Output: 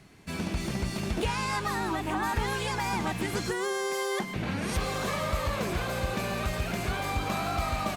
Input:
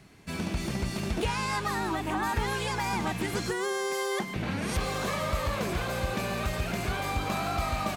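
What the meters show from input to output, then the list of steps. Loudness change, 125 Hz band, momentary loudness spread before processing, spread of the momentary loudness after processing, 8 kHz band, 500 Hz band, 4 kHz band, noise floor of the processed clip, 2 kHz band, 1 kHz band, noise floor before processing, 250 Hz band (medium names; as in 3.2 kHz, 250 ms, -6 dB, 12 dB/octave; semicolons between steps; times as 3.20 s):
0.0 dB, 0.0 dB, 2 LU, 2 LU, 0.0 dB, 0.0 dB, 0.0 dB, -36 dBFS, 0.0 dB, 0.0 dB, -36 dBFS, 0.0 dB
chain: Opus 64 kbps 48 kHz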